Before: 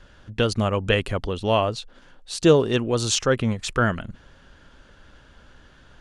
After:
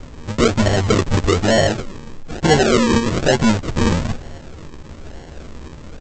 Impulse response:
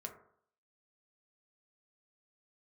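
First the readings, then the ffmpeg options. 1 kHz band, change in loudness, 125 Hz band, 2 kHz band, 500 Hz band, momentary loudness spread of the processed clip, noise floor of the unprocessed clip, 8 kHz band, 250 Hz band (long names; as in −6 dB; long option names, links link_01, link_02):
+6.0 dB, +5.5 dB, +6.5 dB, +6.0 dB, +4.0 dB, 14 LU, −53 dBFS, +3.5 dB, +7.5 dB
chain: -filter_complex "[0:a]acrossover=split=3700[link_01][link_02];[link_02]acompressor=threshold=-40dB:ratio=4:attack=1:release=60[link_03];[link_01][link_03]amix=inputs=2:normalize=0,highshelf=frequency=2300:gain=-7,asplit=2[link_04][link_05];[link_05]acompressor=threshold=-30dB:ratio=6,volume=1dB[link_06];[link_04][link_06]amix=inputs=2:normalize=0,asoftclip=type=hard:threshold=-21dB,asplit=2[link_07][link_08];[link_08]adelay=13,volume=-2.5dB[link_09];[link_07][link_09]amix=inputs=2:normalize=0,asplit=4[link_10][link_11][link_12][link_13];[link_11]adelay=237,afreqshift=-110,volume=-19.5dB[link_14];[link_12]adelay=474,afreqshift=-220,volume=-29.1dB[link_15];[link_13]adelay=711,afreqshift=-330,volume=-38.8dB[link_16];[link_10][link_14][link_15][link_16]amix=inputs=4:normalize=0,aresample=16000,acrusher=samples=18:mix=1:aa=0.000001:lfo=1:lforange=10.8:lforate=1.1,aresample=44100,volume=8dB"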